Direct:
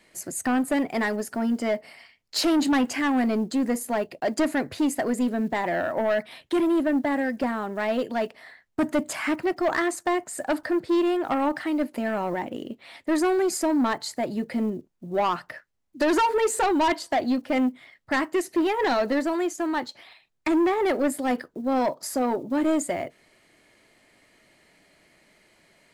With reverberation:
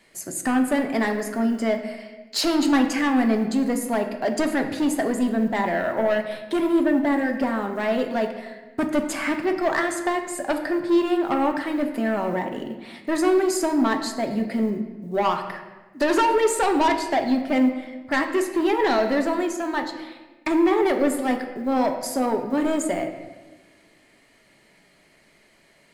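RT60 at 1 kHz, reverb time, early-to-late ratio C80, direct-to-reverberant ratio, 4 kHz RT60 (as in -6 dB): 1.1 s, 1.2 s, 9.5 dB, 5.0 dB, 0.90 s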